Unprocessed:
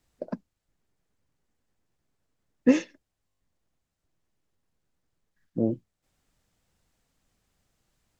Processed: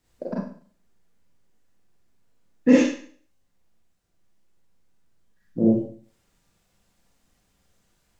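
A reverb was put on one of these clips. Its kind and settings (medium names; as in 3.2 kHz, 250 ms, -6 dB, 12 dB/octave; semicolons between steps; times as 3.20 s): Schroeder reverb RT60 0.48 s, combs from 32 ms, DRR -5 dB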